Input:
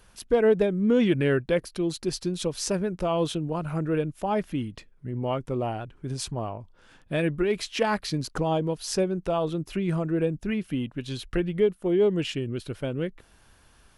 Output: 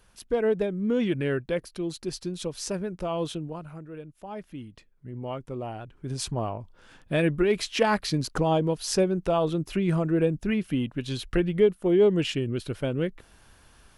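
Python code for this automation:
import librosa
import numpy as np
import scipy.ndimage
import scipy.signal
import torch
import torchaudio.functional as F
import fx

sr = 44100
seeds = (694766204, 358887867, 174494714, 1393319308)

y = fx.gain(x, sr, db=fx.line((3.41, -4.0), (3.88, -15.5), (5.11, -6.0), (5.67, -6.0), (6.32, 2.0)))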